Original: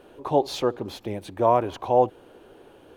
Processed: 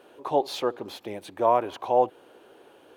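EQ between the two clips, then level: high-pass 440 Hz 6 dB/octave; dynamic bell 6.2 kHz, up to -4 dB, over -49 dBFS, Q 1.5; 0.0 dB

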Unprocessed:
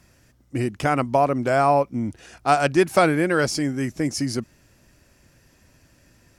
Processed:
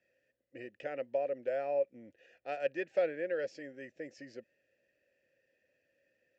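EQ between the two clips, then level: vowel filter e; elliptic low-pass 7.5 kHz, stop band 40 dB; -5.0 dB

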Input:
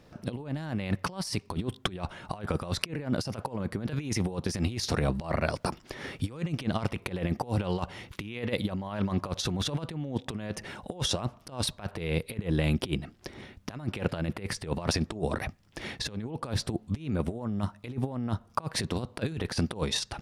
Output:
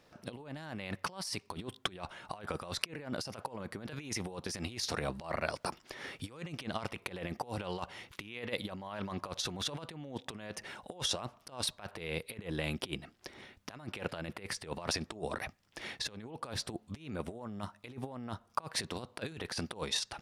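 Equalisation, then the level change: bass shelf 340 Hz -11.5 dB; -3.0 dB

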